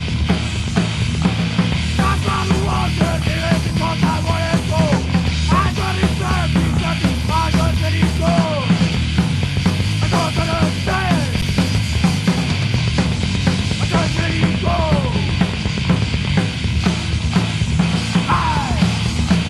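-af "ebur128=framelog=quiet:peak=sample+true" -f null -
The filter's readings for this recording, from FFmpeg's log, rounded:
Integrated loudness:
  I:         -17.5 LUFS
  Threshold: -27.5 LUFS
Loudness range:
  LRA:         0.9 LU
  Threshold: -37.5 LUFS
  LRA low:   -17.9 LUFS
  LRA high:  -17.0 LUFS
Sample peak:
  Peak:       -2.7 dBFS
True peak:
  Peak:       -2.7 dBFS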